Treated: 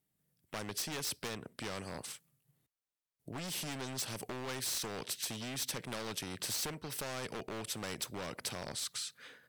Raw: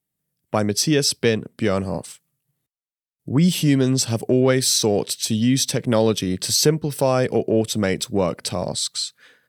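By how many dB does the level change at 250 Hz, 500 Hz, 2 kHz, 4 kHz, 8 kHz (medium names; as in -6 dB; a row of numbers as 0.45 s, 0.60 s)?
-25.0 dB, -24.0 dB, -13.5 dB, -16.0 dB, -15.5 dB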